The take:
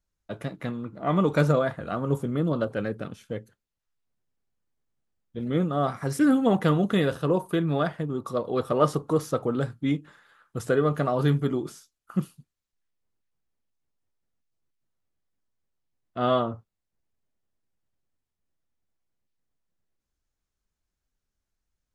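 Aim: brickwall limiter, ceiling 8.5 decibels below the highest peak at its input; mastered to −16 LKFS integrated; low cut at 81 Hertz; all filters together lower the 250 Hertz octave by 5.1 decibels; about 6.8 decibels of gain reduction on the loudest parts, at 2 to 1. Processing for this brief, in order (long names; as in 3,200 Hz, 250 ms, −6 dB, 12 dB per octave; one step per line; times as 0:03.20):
high-pass filter 81 Hz
parametric band 250 Hz −7 dB
downward compressor 2 to 1, threshold −29 dBFS
level +19 dB
brickwall limiter −4 dBFS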